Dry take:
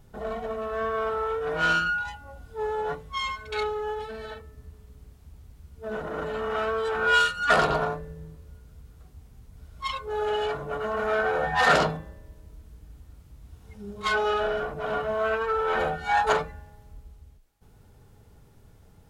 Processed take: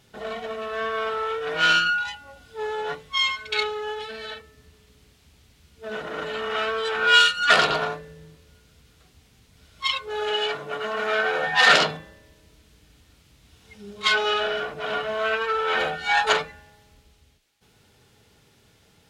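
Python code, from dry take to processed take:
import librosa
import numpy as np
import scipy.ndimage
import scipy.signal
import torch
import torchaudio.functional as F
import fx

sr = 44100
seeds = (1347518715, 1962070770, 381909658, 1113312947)

y = fx.highpass(x, sr, hz=110.0, slope=12, at=(10.31, 11.91))
y = fx.weighting(y, sr, curve='D')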